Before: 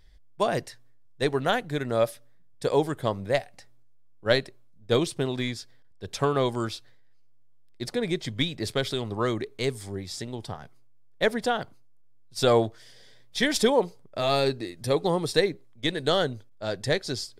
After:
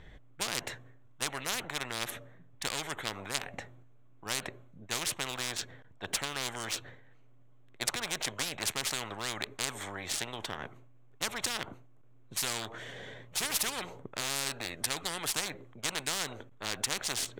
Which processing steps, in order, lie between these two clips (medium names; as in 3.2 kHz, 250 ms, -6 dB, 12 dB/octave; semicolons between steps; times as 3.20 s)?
local Wiener filter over 9 samples; spectrum-flattening compressor 10:1; trim -6.5 dB